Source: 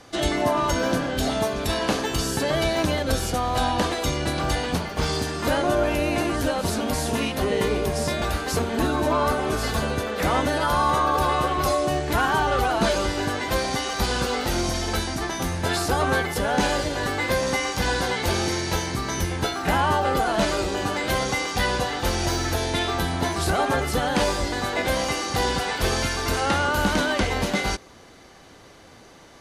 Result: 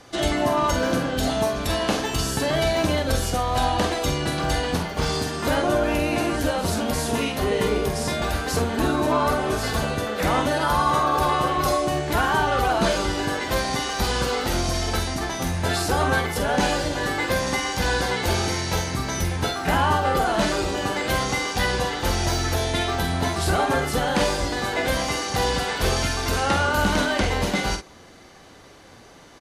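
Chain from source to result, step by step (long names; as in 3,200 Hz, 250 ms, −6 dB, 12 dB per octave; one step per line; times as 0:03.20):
double-tracking delay 47 ms −7 dB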